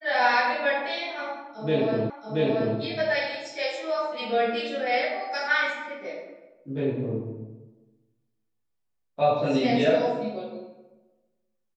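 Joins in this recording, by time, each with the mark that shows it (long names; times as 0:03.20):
0:02.10: the same again, the last 0.68 s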